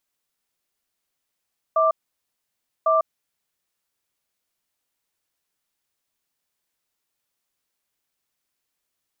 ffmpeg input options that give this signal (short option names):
-f lavfi -i "aevalsrc='0.126*(sin(2*PI*645*t)+sin(2*PI*1180*t))*clip(min(mod(t,1.1),0.15-mod(t,1.1))/0.005,0,1)':d=1.89:s=44100"